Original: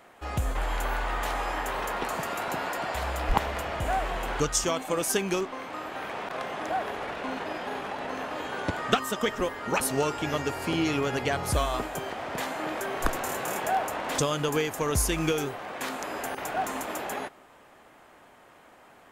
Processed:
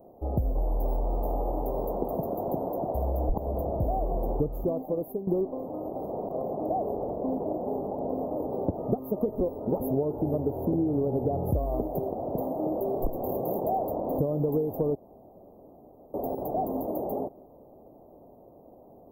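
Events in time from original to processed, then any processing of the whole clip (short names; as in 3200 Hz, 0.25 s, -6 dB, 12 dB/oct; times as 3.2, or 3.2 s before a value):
4.49–5.27 fade out, to -15.5 dB
14.95–16.14 room tone
whole clip: inverse Chebyshev band-stop 1500–8900 Hz, stop band 50 dB; compressor, threshold -30 dBFS; gain +7 dB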